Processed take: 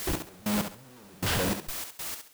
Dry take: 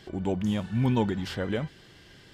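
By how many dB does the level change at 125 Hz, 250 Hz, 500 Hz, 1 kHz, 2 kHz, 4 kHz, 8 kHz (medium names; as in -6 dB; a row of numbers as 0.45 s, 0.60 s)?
-7.0 dB, -5.5 dB, -4.0 dB, 0.0 dB, +4.0 dB, +6.0 dB, +17.0 dB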